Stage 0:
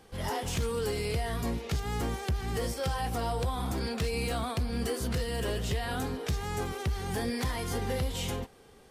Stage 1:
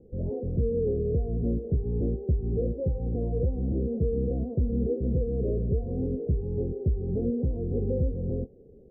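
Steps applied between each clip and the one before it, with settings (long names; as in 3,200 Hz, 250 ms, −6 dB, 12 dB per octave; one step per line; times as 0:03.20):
Butterworth low-pass 540 Hz 48 dB per octave
level +5.5 dB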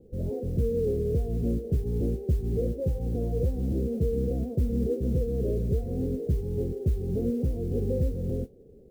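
noise that follows the level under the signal 33 dB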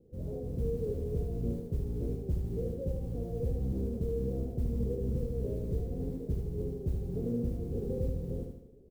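sub-octave generator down 1 octave, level −6 dB
repeating echo 76 ms, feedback 51%, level −4.5 dB
level −8.5 dB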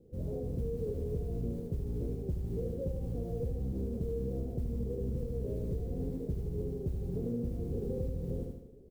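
downward compressor, threshold −33 dBFS, peak gain reduction 6.5 dB
level +2 dB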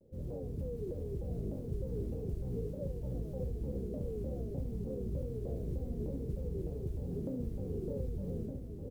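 single-tap delay 1,107 ms −4 dB
pitch modulation by a square or saw wave saw down 3.3 Hz, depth 250 cents
level −4 dB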